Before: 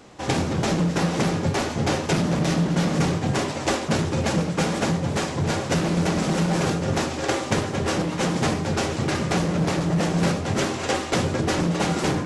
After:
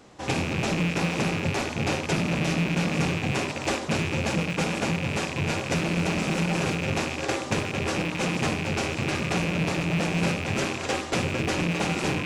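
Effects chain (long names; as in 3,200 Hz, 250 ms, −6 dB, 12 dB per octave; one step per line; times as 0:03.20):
loose part that buzzes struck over −31 dBFS, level −16 dBFS
level −4 dB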